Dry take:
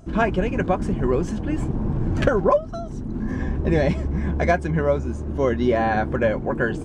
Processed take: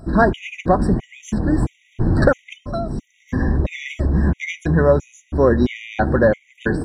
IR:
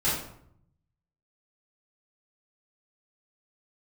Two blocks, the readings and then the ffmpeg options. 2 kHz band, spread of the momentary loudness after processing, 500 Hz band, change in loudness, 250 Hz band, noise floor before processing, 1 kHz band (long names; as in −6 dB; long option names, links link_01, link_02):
+2.5 dB, 11 LU, +2.5 dB, +3.0 dB, +3.5 dB, −31 dBFS, +1.5 dB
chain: -filter_complex "[0:a]acontrast=82,asplit=2[link_01][link_02];[1:a]atrim=start_sample=2205,adelay=8[link_03];[link_02][link_03]afir=irnorm=-1:irlink=0,volume=-30dB[link_04];[link_01][link_04]amix=inputs=2:normalize=0,afftfilt=real='re*gt(sin(2*PI*1.5*pts/sr)*(1-2*mod(floor(b*sr/1024/1900),2)),0)':imag='im*gt(sin(2*PI*1.5*pts/sr)*(1-2*mod(floor(b*sr/1024/1900),2)),0)':win_size=1024:overlap=0.75"